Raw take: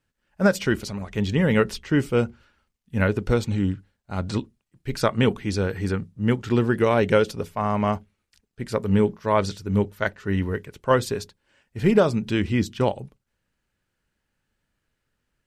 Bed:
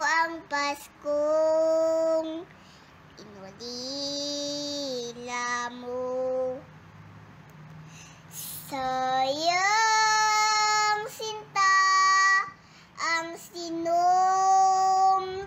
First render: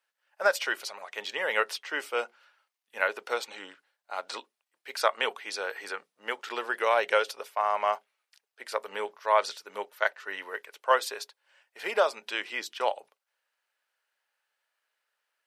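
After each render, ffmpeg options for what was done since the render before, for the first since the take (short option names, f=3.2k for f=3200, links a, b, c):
-af "highpass=f=610:w=0.5412,highpass=f=610:w=1.3066,equalizer=f=7.2k:w=2.2:g=-4"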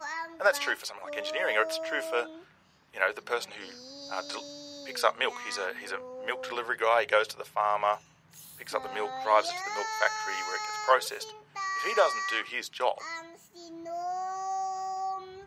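-filter_complex "[1:a]volume=-12dB[a];[0:a][a]amix=inputs=2:normalize=0"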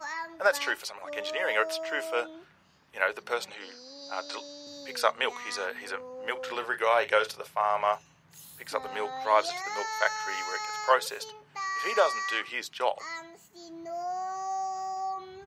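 -filter_complex "[0:a]asettb=1/sr,asplit=3[a][b][c];[a]atrim=end=1.364[d];[b]atrim=start=1.36:end=2.17,asetpts=PTS-STARTPTS,afade=t=in:d=0.004:c=qsin,afade=t=out:st=0.806:d=0.004:c=qsin,lowshelf=f=94:g=-10[e];[c]atrim=start=2.166[f];[d][e]acrossfade=d=0.004:c1=hsin:c2=qsin[g];[g][f]acrossfade=d=0.004:c1=qsin:c2=hsin,asettb=1/sr,asplit=3[h][i][j];[h]atrim=end=3.544[k];[i]atrim=start=3.54:end=4.67,asetpts=PTS-STARTPTS,afade=t=in:d=0.004:c=qsin,afade=t=out:st=1.126:d=0.004:c=qsin,highpass=260,lowpass=6.8k[l];[j]atrim=start=4.666[m];[k][l]acrossfade=d=0.004:c1=hsin:c2=qsin[n];[n][m]acrossfade=d=0.004:c1=qsin:c2=hsin,asplit=3[o][p][q];[o]afade=t=out:st=6.35:d=0.02[r];[p]asplit=2[s][t];[t]adelay=37,volume=-13dB[u];[s][u]amix=inputs=2:normalize=0,afade=t=in:st=6.35:d=0.02,afade=t=out:st=7.92:d=0.02[v];[q]afade=t=in:st=7.92:d=0.02[w];[r][v][w]amix=inputs=3:normalize=0"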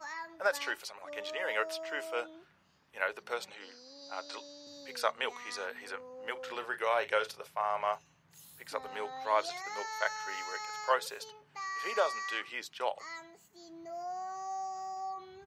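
-af "volume=-6dB"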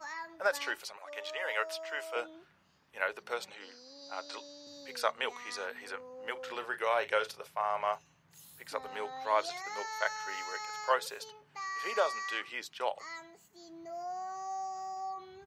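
-filter_complex "[0:a]asettb=1/sr,asplit=3[a][b][c];[a]atrim=end=0.974[d];[b]atrim=start=0.97:end=2.16,asetpts=PTS-STARTPTS,afade=t=in:d=0.004:c=qsin,afade=t=out:st=1.186:d=0.004:c=qsin,highpass=510[e];[c]atrim=start=2.156[f];[d][e]acrossfade=d=0.004:c1=hsin:c2=qsin[g];[g][f]acrossfade=d=0.004:c1=qsin:c2=hsin"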